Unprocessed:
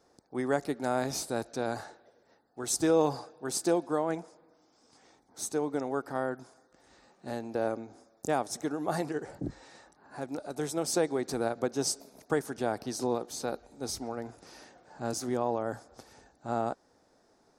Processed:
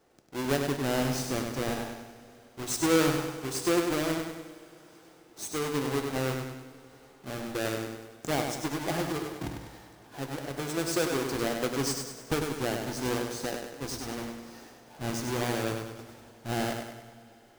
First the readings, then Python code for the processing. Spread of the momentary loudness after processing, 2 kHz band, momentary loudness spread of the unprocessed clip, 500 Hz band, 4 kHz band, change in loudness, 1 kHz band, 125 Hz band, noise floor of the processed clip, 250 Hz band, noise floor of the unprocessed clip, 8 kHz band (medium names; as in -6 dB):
17 LU, +6.0 dB, 13 LU, -0.5 dB, +5.5 dB, +1.5 dB, -0.5 dB, +6.5 dB, -56 dBFS, +2.5 dB, -67 dBFS, +0.5 dB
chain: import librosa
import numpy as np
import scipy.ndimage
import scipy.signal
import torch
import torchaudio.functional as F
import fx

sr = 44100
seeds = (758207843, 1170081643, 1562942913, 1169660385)

y = fx.halfwave_hold(x, sr)
y = fx.echo_feedback(y, sr, ms=99, feedback_pct=49, wet_db=-5.5)
y = fx.rev_double_slope(y, sr, seeds[0], early_s=0.47, late_s=4.8, knee_db=-18, drr_db=8.5)
y = y * librosa.db_to_amplitude(-5.0)